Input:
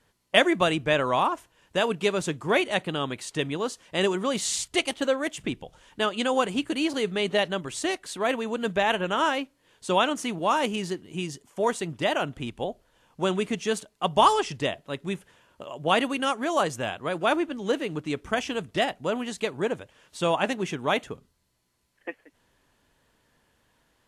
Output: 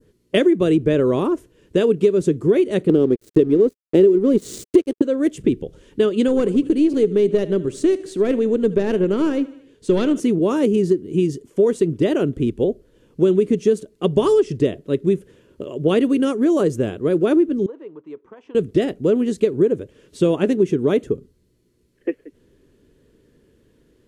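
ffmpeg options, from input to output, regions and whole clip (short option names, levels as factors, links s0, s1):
-filter_complex "[0:a]asettb=1/sr,asplit=3[s0][s1][s2];[s0]atrim=end=2.894[s3];[s1]atrim=start=2.89:end=5.02,asetpts=PTS-STARTPTS,afade=t=in:d=0.004:c=qsin,afade=t=out:st=2.126:d=0.004:c=qsin,equalizer=f=360:w=0.51:g=12,aeval=exprs='sgn(val(0))*max(abs(val(0))-0.0251,0)':c=same[s4];[s2]atrim=start=5.016[s5];[s3][s4]acrossfade=d=0.004:c1=hsin:c2=qsin[s6];[s6][s5]acrossfade=d=0.004:c1=qsin:c2=hsin,asettb=1/sr,asplit=3[s7][s8][s9];[s7]atrim=end=6.284[s10];[s8]atrim=start=6.28:end=10.2,asetpts=PTS-STARTPTS,afade=t=in:d=0.004:c=qsin,afade=t=out:st=3.916:d=0.004:c=qsin,lowpass=11000,aecho=1:1:76|152|228|304:0.119|0.0618|0.0321|0.0167,atrim=end_sample=172872,aeval=exprs='(tanh(5.62*val(0)+0.5)-tanh(0.5))/5.62':c=same[s11];[s9]atrim=start=10.196[s12];[s10][s11]acrossfade=d=0.004:c1=hsin:c2=qsin[s13];[s13][s12]acrossfade=d=0.004:c1=qsin:c2=hsin,asettb=1/sr,asplit=3[s14][s15][s16];[s14]atrim=end=17.664[s17];[s15]atrim=start=17.66:end=18.55,asetpts=PTS-STARTPTS,afade=t=in:d=0.004:c=qsin,afade=t=out:st=0.886:d=0.004:c=qsin,bandpass=f=960:t=q:w=4.8,acompressor=threshold=0.00708:ratio=2.5:attack=3.2:release=140:knee=1:detection=peak[s18];[s16]atrim=start=18.546[s19];[s17][s18]acrossfade=d=0.004:c1=hsin:c2=qsin[s20];[s20][s19]acrossfade=d=0.004:c1=qsin:c2=hsin,lowshelf=f=570:t=q:w=3:g=11.5,acompressor=threshold=0.251:ratio=6,adynamicequalizer=threshold=0.00891:dfrequency=2900:dqfactor=0.88:tfrequency=2900:tqfactor=0.88:attack=5:release=100:ratio=0.375:range=3:mode=cutabove:tftype=bell"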